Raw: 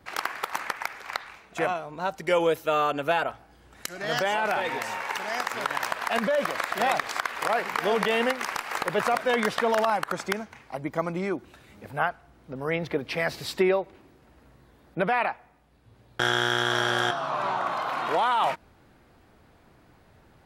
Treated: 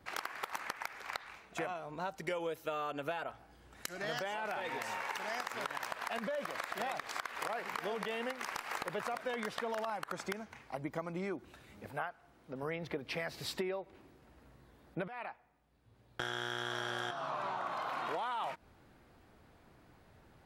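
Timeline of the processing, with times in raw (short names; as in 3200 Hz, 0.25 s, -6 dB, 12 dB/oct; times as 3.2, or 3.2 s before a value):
11.9–12.63 low shelf 130 Hz -11.5 dB
15.08–16.83 fade in, from -13.5 dB
whole clip: compressor, threshold -30 dBFS; gain -5 dB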